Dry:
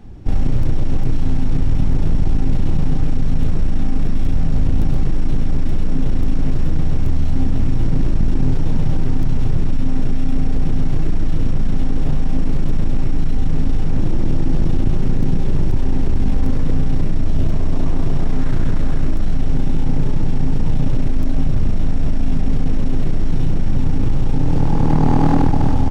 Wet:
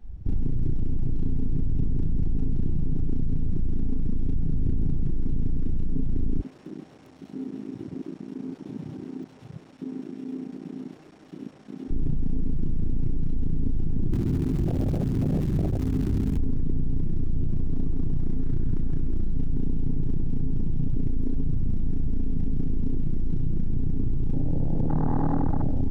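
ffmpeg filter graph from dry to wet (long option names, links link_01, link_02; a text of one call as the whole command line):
ffmpeg -i in.wav -filter_complex "[0:a]asettb=1/sr,asplit=3[link_01][link_02][link_03];[link_01]atrim=end=6.404[link_04];[link_02]atrim=start=6.4:end=11.91,asetpts=PTS-STARTPTS,afade=type=in:duration=0.004:curve=qsin,afade=type=out:start_time=5.506:duration=0.004:curve=qsin,highpass=340,asoftclip=type=hard:threshold=-27dB[link_05];[link_03]atrim=start=11.906[link_06];[link_04][link_05]acrossfade=duration=0.004:curve1=hsin:curve2=qsin[link_07];[link_07][link_06]acrossfade=duration=0.004:curve1=qsin:curve2=hsin,asettb=1/sr,asplit=3[link_08][link_09][link_10];[link_08]atrim=end=14.124[link_11];[link_09]atrim=start=14.12:end=16.38,asetpts=PTS-STARTPTS,afade=type=in:duration=0.004:curve=qsin,afade=type=out:start_time=2.256:duration=0.004:curve=qsin,highpass=52,acrusher=bits=5:dc=4:mix=0:aa=0.000001[link_12];[link_10]atrim=start=16.376[link_13];[link_11][link_12]acrossfade=duration=0.004:curve1=hsin:curve2=qsin[link_14];[link_14][link_13]acrossfade=duration=0.004:curve1=qsin:curve2=hsin,afwtdn=0.112,alimiter=limit=-18dB:level=0:latency=1:release=10" out.wav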